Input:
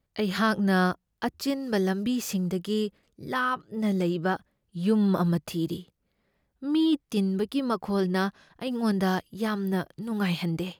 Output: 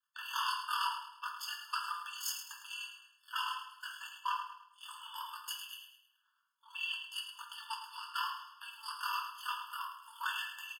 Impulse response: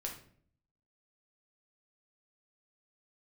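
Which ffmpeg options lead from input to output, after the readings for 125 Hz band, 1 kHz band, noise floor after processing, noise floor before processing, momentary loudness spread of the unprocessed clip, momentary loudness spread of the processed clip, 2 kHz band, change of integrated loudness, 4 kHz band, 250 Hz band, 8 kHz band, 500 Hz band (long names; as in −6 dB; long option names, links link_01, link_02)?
below −40 dB, −5.5 dB, −77 dBFS, −77 dBFS, 9 LU, 12 LU, −8.0 dB, −12.0 dB, −2.0 dB, below −40 dB, −3.0 dB, below −40 dB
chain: -filter_complex "[0:a]acrossover=split=1000[link_01][link_02];[link_01]aeval=exprs='val(0)*(1-0.5/2+0.5/2*cos(2*PI*9*n/s))':channel_layout=same[link_03];[link_02]aeval=exprs='val(0)*(1-0.5/2-0.5/2*cos(2*PI*9*n/s))':channel_layout=same[link_04];[link_03][link_04]amix=inputs=2:normalize=0,afreqshift=-490,acrossover=split=670|2000[link_05][link_06][link_07];[link_06]aeval=exprs='0.0188*(abs(mod(val(0)/0.0188+3,4)-2)-1)':channel_layout=same[link_08];[link_05][link_08][link_07]amix=inputs=3:normalize=0,aeval=exprs='0.211*(cos(1*acos(clip(val(0)/0.211,-1,1)))-cos(1*PI/2))+0.075*(cos(2*acos(clip(val(0)/0.211,-1,1)))-cos(2*PI/2))':channel_layout=same,aeval=exprs='val(0)*sin(2*PI*20*n/s)':channel_layout=same,aecho=1:1:106|212|318|424:0.355|0.138|0.054|0.021[link_09];[1:a]atrim=start_sample=2205,afade=type=out:start_time=0.14:duration=0.01,atrim=end_sample=6615[link_10];[link_09][link_10]afir=irnorm=-1:irlink=0,afftfilt=real='re*eq(mod(floor(b*sr/1024/890),2),1)':imag='im*eq(mod(floor(b*sr/1024/890),2),1)':win_size=1024:overlap=0.75,volume=7dB"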